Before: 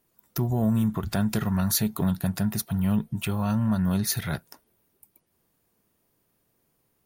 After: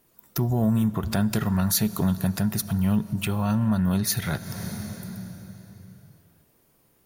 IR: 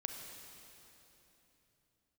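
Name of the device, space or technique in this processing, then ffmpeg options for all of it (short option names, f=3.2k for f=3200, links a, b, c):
ducked reverb: -filter_complex "[0:a]asplit=3[a][b][c];[1:a]atrim=start_sample=2205[d];[b][d]afir=irnorm=-1:irlink=0[e];[c]apad=whole_len=311014[f];[e][f]sidechaincompress=threshold=-41dB:ratio=4:attack=5.1:release=195,volume=4.5dB[g];[a][g]amix=inputs=2:normalize=0"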